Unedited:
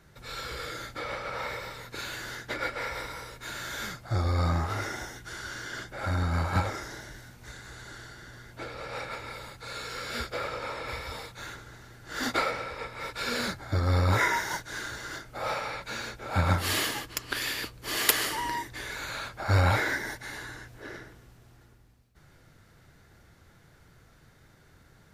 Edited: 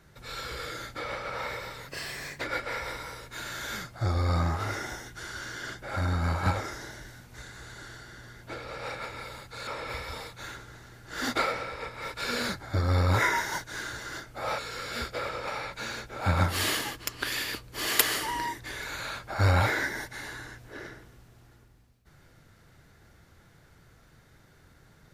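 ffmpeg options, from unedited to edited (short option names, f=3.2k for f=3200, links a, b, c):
-filter_complex "[0:a]asplit=6[a][b][c][d][e][f];[a]atrim=end=1.884[g];[b]atrim=start=1.88:end=2.51,asetpts=PTS-STARTPTS,asetrate=52038,aresample=44100[h];[c]atrim=start=2.506:end=9.772[i];[d]atrim=start=10.658:end=15.572[j];[e]atrim=start=9.768:end=10.662[k];[f]atrim=start=15.568[l];[g][h]acrossfade=d=0.004:c1=hsin:c2=hsin[m];[m][i]acrossfade=d=0.004:c1=hsin:c2=hsin[n];[n][j]acrossfade=d=0.004:c1=hsin:c2=hsin[o];[o][k]acrossfade=d=0.004:c1=hsin:c2=hsin[p];[p][l]acrossfade=d=0.004:c1=hsin:c2=hsin"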